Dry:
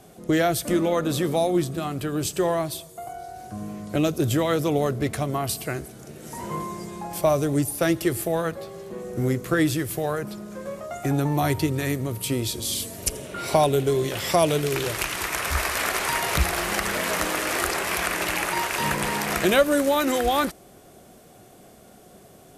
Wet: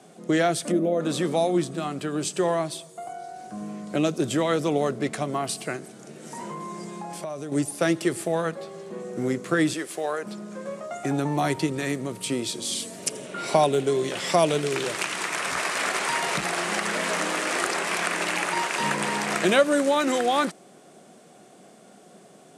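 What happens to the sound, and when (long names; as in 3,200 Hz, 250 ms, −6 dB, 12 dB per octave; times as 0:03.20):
0:00.71–0:01.01: gain on a spectral selection 780–9,800 Hz −14 dB
0:05.76–0:07.52: downward compressor, threshold −30 dBFS
0:09.73–0:10.26: high-pass filter 350 Hz
0:15.33–0:17.38: hard clipping −17.5 dBFS
whole clip: Chebyshev band-pass filter 170–9,000 Hz, order 3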